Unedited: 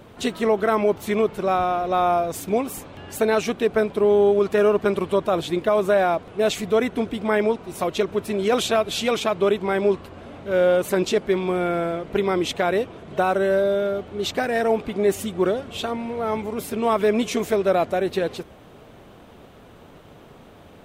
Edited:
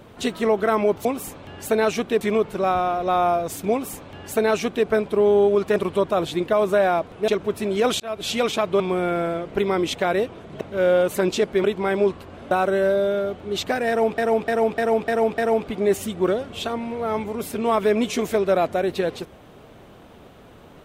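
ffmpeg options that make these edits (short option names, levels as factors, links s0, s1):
-filter_complex "[0:a]asplit=15[s0][s1][s2][s3][s4][s5][s6][s7][s8][s9][s10][s11][s12][s13][s14];[s0]atrim=end=1.052[s15];[s1]atrim=start=2.548:end=3.712[s16];[s2]atrim=start=1.048:end=4.602[s17];[s3]atrim=start=4.918:end=6.442[s18];[s4]atrim=start=7.958:end=8.68,asetpts=PTS-STARTPTS,afade=t=out:st=0.718:d=0.004:c=hsin[s19];[s5]atrim=start=8.68:end=9.482,asetpts=PTS-STARTPTS,afade=t=in:d=0.29[s20];[s6]atrim=start=11.378:end=13.192[s21];[s7]atrim=start=10.348:end=11.382[s22];[s8]atrim=start=9.478:end=10.352[s23];[s9]atrim=start=13.188:end=14.862[s24];[s10]atrim=start=14.558:end=14.862[s25];[s11]atrim=start=14.558:end=14.862[s26];[s12]atrim=start=14.558:end=14.862[s27];[s13]atrim=start=14.558:end=14.862[s28];[s14]atrim=start=14.558[s29];[s15][s16]acrossfade=d=0.004:c1=hsin:c2=hsin[s30];[s30][s17]acrossfade=d=0.004:c1=hsin:c2=hsin[s31];[s31][s18]acrossfade=d=0.004:c1=hsin:c2=hsin[s32];[s19][s20]concat=n=2:v=0:a=1[s33];[s32][s33]acrossfade=d=0.004:c1=hsin:c2=hsin[s34];[s34][s21]acrossfade=d=0.004:c1=hsin:c2=hsin[s35];[s35][s22]acrossfade=d=0.004:c1=hsin:c2=hsin[s36];[s36][s23]acrossfade=d=0.004:c1=hsin:c2=hsin[s37];[s37][s24]acrossfade=d=0.004:c1=hsin:c2=hsin[s38];[s38][s25]acrossfade=d=0.004:c1=hsin:c2=hsin[s39];[s39][s26]acrossfade=d=0.004:c1=hsin:c2=hsin[s40];[s40][s27]acrossfade=d=0.004:c1=hsin:c2=hsin[s41];[s41][s28]acrossfade=d=0.004:c1=hsin:c2=hsin[s42];[s42][s29]acrossfade=d=0.004:c1=hsin:c2=hsin"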